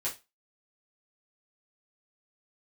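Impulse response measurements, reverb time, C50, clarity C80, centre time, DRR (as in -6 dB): 0.25 s, 12.0 dB, 20.5 dB, 19 ms, -7.5 dB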